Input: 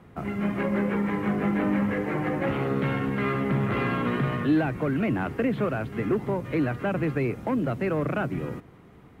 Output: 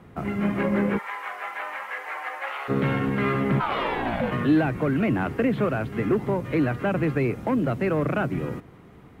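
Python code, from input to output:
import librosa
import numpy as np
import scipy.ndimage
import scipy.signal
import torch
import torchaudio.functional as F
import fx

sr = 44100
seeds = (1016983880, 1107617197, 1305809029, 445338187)

y = fx.highpass(x, sr, hz=780.0, slope=24, at=(0.97, 2.68), fade=0.02)
y = fx.ring_mod(y, sr, carrier_hz=fx.line((3.59, 1200.0), (4.3, 330.0)), at=(3.59, 4.3), fade=0.02)
y = F.gain(torch.from_numpy(y), 2.5).numpy()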